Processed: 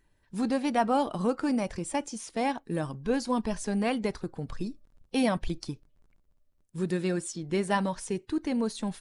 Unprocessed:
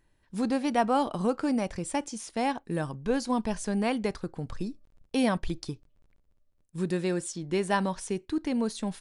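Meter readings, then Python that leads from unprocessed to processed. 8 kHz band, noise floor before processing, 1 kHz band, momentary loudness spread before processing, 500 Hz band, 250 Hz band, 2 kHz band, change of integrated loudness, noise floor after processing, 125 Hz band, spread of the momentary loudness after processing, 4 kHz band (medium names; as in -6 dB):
-0.5 dB, -69 dBFS, -0.5 dB, 11 LU, -0.5 dB, -0.5 dB, -0.5 dB, -0.5 dB, -69 dBFS, 0.0 dB, 11 LU, -0.5 dB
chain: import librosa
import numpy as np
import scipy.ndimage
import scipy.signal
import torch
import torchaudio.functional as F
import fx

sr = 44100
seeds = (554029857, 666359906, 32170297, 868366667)

y = fx.spec_quant(x, sr, step_db=15)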